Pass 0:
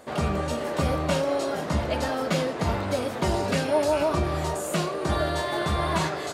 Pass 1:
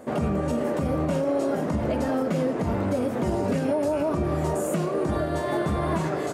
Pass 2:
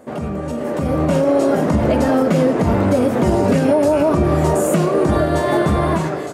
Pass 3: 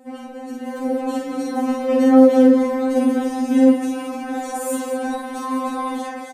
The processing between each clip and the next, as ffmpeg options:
-af "equalizer=f=125:t=o:w=1:g=5,equalizer=f=250:t=o:w=1:g=9,equalizer=f=500:t=o:w=1:g=4,equalizer=f=4000:t=o:w=1:g=-8,alimiter=limit=0.15:level=0:latency=1:release=134"
-af "dynaudnorm=f=580:g=3:m=3.16"
-af "aecho=1:1:49.56|218.7:0.708|0.355,afftfilt=real='re*3.46*eq(mod(b,12),0)':imag='im*3.46*eq(mod(b,12),0)':win_size=2048:overlap=0.75,volume=0.631"

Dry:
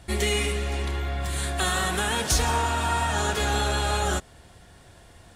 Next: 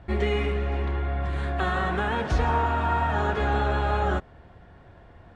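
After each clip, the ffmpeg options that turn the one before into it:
-af "lowpass=1700,volume=1.19"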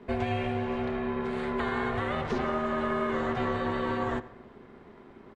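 -filter_complex "[0:a]acrossover=split=88|4500[s0][s1][s2];[s0]acompressor=threshold=0.02:ratio=4[s3];[s1]acompressor=threshold=0.0447:ratio=4[s4];[s2]acompressor=threshold=0.00112:ratio=4[s5];[s3][s4][s5]amix=inputs=3:normalize=0,asplit=2[s6][s7];[s7]adelay=91,lowpass=f=4200:p=1,volume=0.141,asplit=2[s8][s9];[s9]adelay=91,lowpass=f=4200:p=1,volume=0.5,asplit=2[s10][s11];[s11]adelay=91,lowpass=f=4200:p=1,volume=0.5,asplit=2[s12][s13];[s13]adelay=91,lowpass=f=4200:p=1,volume=0.5[s14];[s6][s8][s10][s12][s14]amix=inputs=5:normalize=0,aeval=exprs='val(0)*sin(2*PI*310*n/s)':c=same,volume=1.19"

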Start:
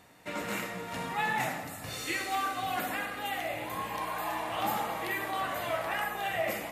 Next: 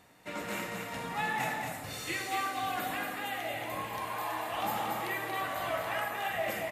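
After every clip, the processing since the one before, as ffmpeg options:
-af "aecho=1:1:232:0.596,volume=0.75"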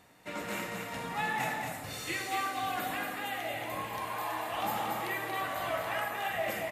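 -af anull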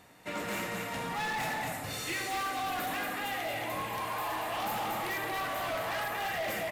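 -af "volume=50.1,asoftclip=hard,volume=0.02,volume=1.41"

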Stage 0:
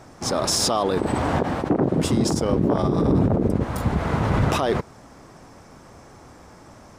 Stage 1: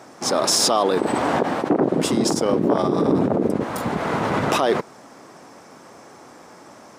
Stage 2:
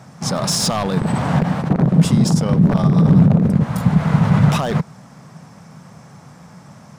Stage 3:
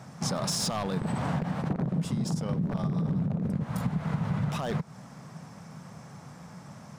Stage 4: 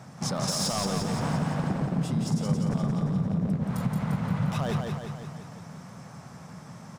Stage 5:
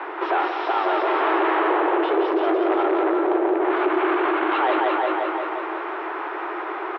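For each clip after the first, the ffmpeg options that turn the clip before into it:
-af "highpass=240,volume=1.5"
-af "aeval=exprs='0.299*(abs(mod(val(0)/0.299+3,4)-2)-1)':c=same,lowshelf=f=230:t=q:w=3:g=12,volume=0.891"
-af "acompressor=threshold=0.0794:ratio=6,volume=0.596"
-af "aecho=1:1:174|348|522|696|870|1044|1218|1392:0.631|0.366|0.212|0.123|0.0714|0.0414|0.024|0.0139"
-filter_complex "[0:a]asplit=2[s0][s1];[s1]highpass=f=720:p=1,volume=25.1,asoftclip=type=tanh:threshold=0.2[s2];[s0][s2]amix=inputs=2:normalize=0,lowpass=f=1300:p=1,volume=0.501,asplit=2[s3][s4];[s4]adelay=367.3,volume=0.447,highshelf=f=4000:g=-8.27[s5];[s3][s5]amix=inputs=2:normalize=0,highpass=f=170:t=q:w=0.5412,highpass=f=170:t=q:w=1.307,lowpass=f=3200:t=q:w=0.5176,lowpass=f=3200:t=q:w=0.7071,lowpass=f=3200:t=q:w=1.932,afreqshift=170,volume=1.41"

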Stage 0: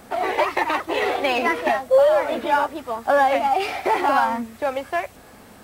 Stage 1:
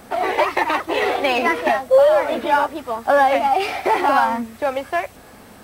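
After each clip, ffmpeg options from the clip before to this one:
-af "bandreject=f=7000:w=27,volume=1.33"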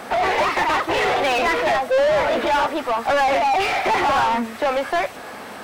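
-filter_complex "[0:a]asplit=2[s0][s1];[s1]highpass=f=720:p=1,volume=20,asoftclip=type=tanh:threshold=0.531[s2];[s0][s2]amix=inputs=2:normalize=0,lowpass=f=2700:p=1,volume=0.501,volume=0.473"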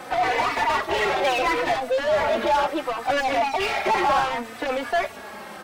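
-filter_complex "[0:a]asplit=2[s0][s1];[s1]adelay=3.4,afreqshift=-0.7[s2];[s0][s2]amix=inputs=2:normalize=1"

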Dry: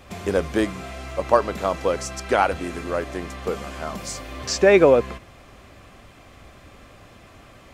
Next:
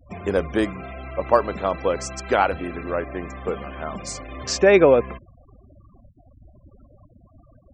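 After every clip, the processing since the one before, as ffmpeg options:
-af "afftfilt=real='re*gte(hypot(re,im),0.0158)':imag='im*gte(hypot(re,im),0.0158)':win_size=1024:overlap=0.75"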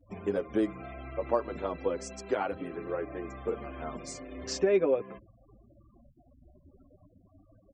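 -filter_complex "[0:a]equalizer=f=340:w=0.88:g=7.5,acompressor=threshold=0.112:ratio=2,asplit=2[s0][s1];[s1]adelay=7.4,afreqshift=0.4[s2];[s0][s2]amix=inputs=2:normalize=1,volume=0.422"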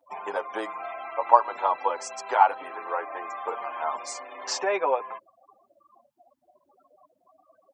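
-af "highpass=f=890:t=q:w=5.8,volume=2"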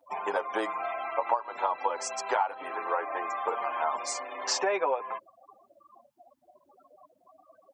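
-af "acompressor=threshold=0.0501:ratio=10,volume=1.33"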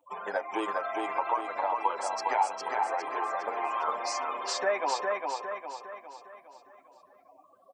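-filter_complex "[0:a]afftfilt=real='re*pow(10,12/40*sin(2*PI*(0.68*log(max(b,1)*sr/1024/100)/log(2)-(1.6)*(pts-256)/sr)))':imag='im*pow(10,12/40*sin(2*PI*(0.68*log(max(b,1)*sr/1024/100)/log(2)-(1.6)*(pts-256)/sr)))':win_size=1024:overlap=0.75,asplit=2[s0][s1];[s1]aecho=0:1:407|814|1221|1628|2035|2442:0.668|0.307|0.141|0.0651|0.0299|0.0138[s2];[s0][s2]amix=inputs=2:normalize=0,volume=0.668"

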